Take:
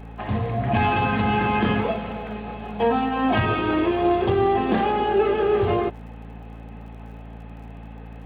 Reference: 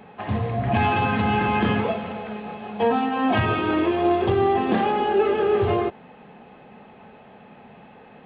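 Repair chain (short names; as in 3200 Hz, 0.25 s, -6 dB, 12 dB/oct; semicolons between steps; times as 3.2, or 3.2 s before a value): de-click; de-hum 56 Hz, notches 5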